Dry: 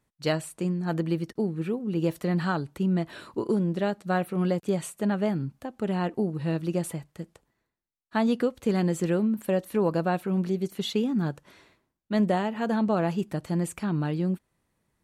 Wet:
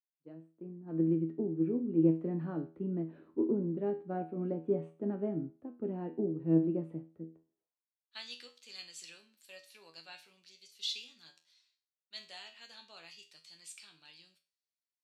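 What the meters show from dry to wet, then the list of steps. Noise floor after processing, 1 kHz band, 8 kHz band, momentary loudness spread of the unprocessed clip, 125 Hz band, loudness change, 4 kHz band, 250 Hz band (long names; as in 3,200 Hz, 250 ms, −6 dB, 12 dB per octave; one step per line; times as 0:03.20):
below −85 dBFS, −17.5 dB, −11.5 dB, 6 LU, −11.0 dB, −6.5 dB, −4.0 dB, −8.0 dB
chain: fade in at the beginning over 1.27 s
dynamic equaliser 2,500 Hz, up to +6 dB, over −55 dBFS, Q 2.3
tuned comb filter 81 Hz, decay 0.39 s, harmonics all, mix 80%
band-pass filter sweep 300 Hz → 4,700 Hz, 0:07.49–0:08.20
multiband upward and downward expander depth 40%
level +7 dB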